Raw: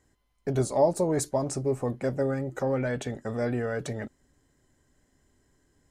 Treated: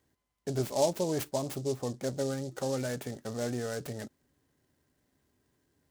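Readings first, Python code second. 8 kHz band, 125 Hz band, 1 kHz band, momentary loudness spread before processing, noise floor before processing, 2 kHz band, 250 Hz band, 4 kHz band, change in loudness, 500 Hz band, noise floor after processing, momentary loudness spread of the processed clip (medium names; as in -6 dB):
-2.0 dB, -5.5 dB, -5.5 dB, 10 LU, -71 dBFS, -6.0 dB, -5.0 dB, +4.0 dB, -5.0 dB, -5.0 dB, -81 dBFS, 10 LU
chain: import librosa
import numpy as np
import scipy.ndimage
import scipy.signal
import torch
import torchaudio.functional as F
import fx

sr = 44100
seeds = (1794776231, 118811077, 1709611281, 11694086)

y = scipy.signal.sosfilt(scipy.signal.butter(2, 77.0, 'highpass', fs=sr, output='sos'), x)
y = fx.noise_mod_delay(y, sr, seeds[0], noise_hz=5600.0, depth_ms=0.061)
y = F.gain(torch.from_numpy(y), -5.0).numpy()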